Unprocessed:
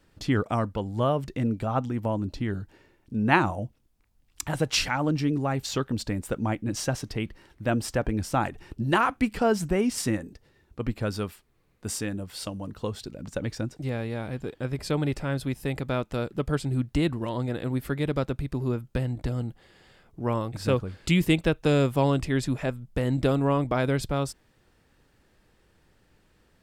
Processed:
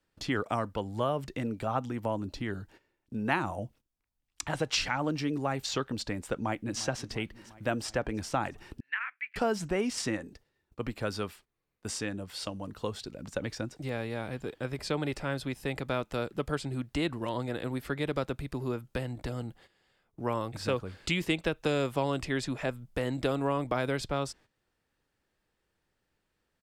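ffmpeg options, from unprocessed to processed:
-filter_complex "[0:a]asplit=2[a][b];[b]afade=t=in:st=6.35:d=0.01,afade=t=out:st=6.79:d=0.01,aecho=0:1:350|700|1050|1400|1750|2100|2450:0.133352|0.0866789|0.0563413|0.0366218|0.0238042|0.0154727|0.0100573[c];[a][c]amix=inputs=2:normalize=0,asettb=1/sr,asplit=3[d][e][f];[d]atrim=end=8.804[g];[e]atrim=start=8.8:end=9.36,asetpts=PTS-STARTPTS,afade=t=in:d=0.004:c=qsin,afade=t=out:st=0.556:d=0.004:c=qsin,asuperpass=centerf=2000:order=4:qfactor=2.6[h];[f]atrim=start=9.356[i];[g][h]acrossfade=d=0.004:c1=hsin:c2=qsin[j];[j][i]acrossfade=d=0.004:c1=qsin:c2=hsin,agate=range=-13dB:threshold=-50dB:ratio=16:detection=peak,lowshelf=f=360:g=-6,acrossover=split=280|7700[k][l][m];[k]acompressor=threshold=-35dB:ratio=4[n];[l]acompressor=threshold=-26dB:ratio=4[o];[m]acompressor=threshold=-58dB:ratio=4[p];[n][o][p]amix=inputs=3:normalize=0"

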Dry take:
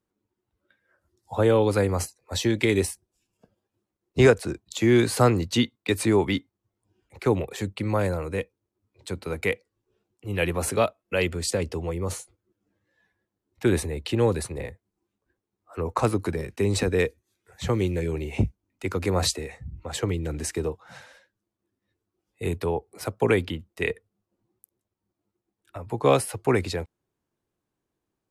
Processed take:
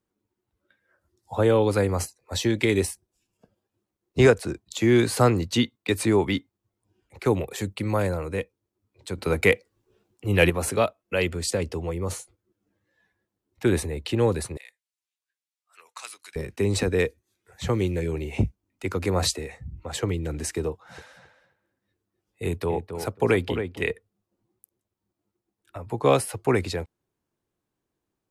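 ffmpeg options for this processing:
-filter_complex "[0:a]asettb=1/sr,asplit=3[a][b][c];[a]atrim=end=7.254[d];[b]atrim=start=7.25:end=8.03,asetpts=PTS-STARTPTS,afade=t=in:d=0.004:c=qsin,afade=t=out:st=0.776:d=0.004:c=qsin,highshelf=f=7.3k:g=7[e];[c]atrim=start=8.026[f];[d][e]acrossfade=d=0.004:c1=hsin:c2=qsin[g];[g][f]acrossfade=d=0.004:c1=qsin:c2=hsin,asettb=1/sr,asplit=3[h][i][j];[h]atrim=end=9.184[k];[i]atrim=start=9.18:end=10.5,asetpts=PTS-STARTPTS,afade=t=in:d=0.004:c=qsin,afade=t=out:st=1.316:d=0.004:c=qsin,acontrast=78[l];[j]atrim=start=10.496[m];[k][l]acrossfade=d=0.004:c1=hsin:c2=qsin[n];[n][m]acrossfade=d=0.004:c1=qsin:c2=hsin,asettb=1/sr,asplit=3[o][p][q];[o]atrim=end=14.574[r];[p]atrim=start=14.57:end=16.36,asetpts=PTS-STARTPTS,afade=t=in:d=0.004:c=qsin,afade=t=out:st=1.786:d=0.004:c=qsin,asuperpass=centerf=5900:order=4:qfactor=0.62[s];[q]atrim=start=16.356[t];[r][s]acrossfade=d=0.004:c1=hsin:c2=qsin[u];[u][t]acrossfade=d=0.004:c1=qsin:c2=hsin,asettb=1/sr,asplit=3[v][w][x];[v]atrim=end=20.714[y];[w]atrim=start=20.71:end=23.81,asetpts=PTS-STARTPTS,afade=t=in:d=0.004:c=qsin,afade=t=out:st=3.096:d=0.004:c=qsin,asplit=2[z][aa];[aa]adelay=270,lowpass=f=2.1k:p=1,volume=-7.5dB,asplit=2[ab][ac];[ac]adelay=270,lowpass=f=2.1k:p=1,volume=0.16,asplit=2[ad][ae];[ae]adelay=270,lowpass=f=2.1k:p=1,volume=0.16[af];[z][ab][ad][af]amix=inputs=4:normalize=0,atrim=end_sample=136710[ag];[x]atrim=start=23.806[ah];[y][ag]acrossfade=d=0.004:c1=hsin:c2=qsin[ai];[ai][ah]acrossfade=d=0.004:c1=qsin:c2=hsin"

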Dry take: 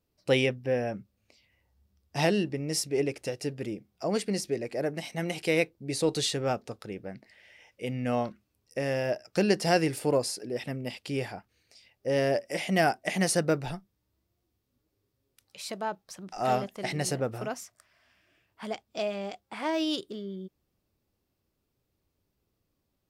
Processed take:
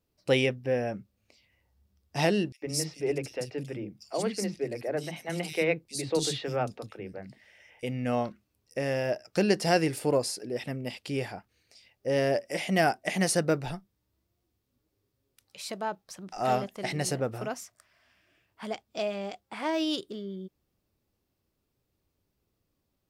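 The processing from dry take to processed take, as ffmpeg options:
-filter_complex "[0:a]asettb=1/sr,asplit=3[a][b][c];[a]atrim=end=2.524[d];[b]atrim=start=2.52:end=7.83,asetpts=PTS-STARTPTS,afade=t=in:d=0.004:c=qsin,afade=t=out:st=5.306:d=0.004:c=qsin,acrossover=split=260|3400[e][f][g];[f]adelay=100[h];[e]adelay=140[i];[i][h][g]amix=inputs=3:normalize=0,atrim=end_sample=234171[j];[c]atrim=start=7.826[k];[d][j]acrossfade=d=0.004:c1=hsin:c2=qsin[l];[l][k]acrossfade=d=0.004:c1=qsin:c2=hsin"

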